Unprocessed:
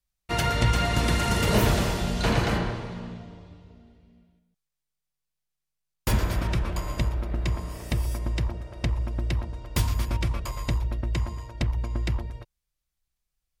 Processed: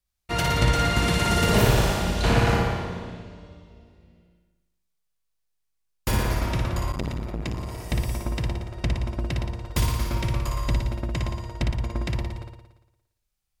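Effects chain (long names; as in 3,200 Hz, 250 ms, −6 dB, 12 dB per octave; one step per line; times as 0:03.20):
on a send: flutter between parallel walls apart 9.9 metres, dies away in 0.95 s
0:06.92–0:07.92: on the sum: saturating transformer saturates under 370 Hz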